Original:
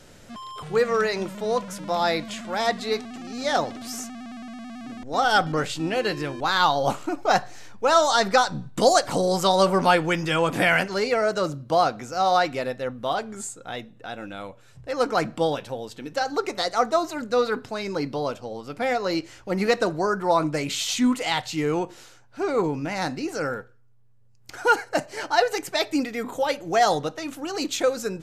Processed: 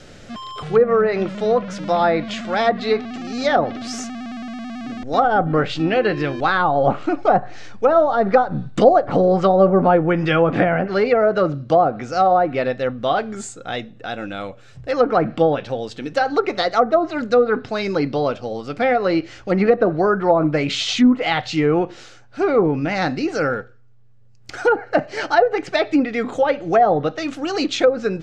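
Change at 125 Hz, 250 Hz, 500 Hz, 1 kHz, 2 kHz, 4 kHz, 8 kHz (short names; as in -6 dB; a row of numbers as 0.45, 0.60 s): +7.5 dB, +7.5 dB, +7.0 dB, +4.0 dB, +2.0 dB, -0.5 dB, n/a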